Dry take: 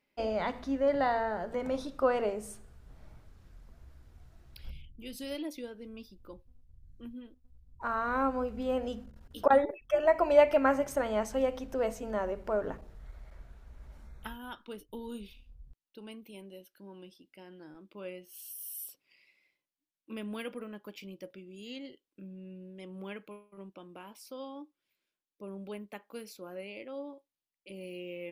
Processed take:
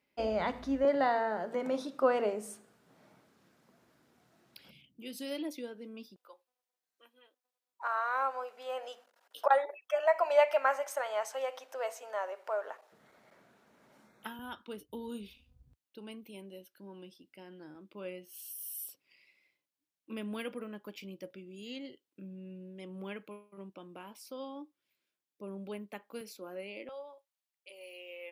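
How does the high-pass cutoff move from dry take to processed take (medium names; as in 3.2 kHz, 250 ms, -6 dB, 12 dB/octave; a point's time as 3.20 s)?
high-pass 24 dB/octave
44 Hz
from 0.85 s 180 Hz
from 6.16 s 610 Hz
from 12.92 s 190 Hz
from 14.39 s 69 Hz
from 26.21 s 190 Hz
from 26.89 s 560 Hz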